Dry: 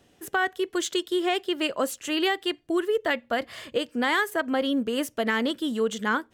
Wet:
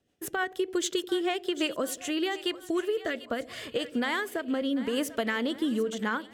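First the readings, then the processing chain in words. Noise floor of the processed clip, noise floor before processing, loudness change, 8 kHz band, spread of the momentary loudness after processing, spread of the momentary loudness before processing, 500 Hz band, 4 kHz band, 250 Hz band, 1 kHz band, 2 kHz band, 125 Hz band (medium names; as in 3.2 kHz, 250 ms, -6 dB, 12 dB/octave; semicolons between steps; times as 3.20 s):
-51 dBFS, -61 dBFS, -3.5 dB, -1.0 dB, 4 LU, 5 LU, -3.5 dB, -4.0 dB, -2.0 dB, -6.0 dB, -5.5 dB, no reading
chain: gate -48 dBFS, range -16 dB; compression, threshold -27 dBFS, peak gain reduction 7.5 dB; rotary cabinet horn 6.7 Hz, later 0.8 Hz, at 1.30 s; on a send: two-band feedback delay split 620 Hz, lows 87 ms, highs 743 ms, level -15 dB; on the sum: trim +3.5 dB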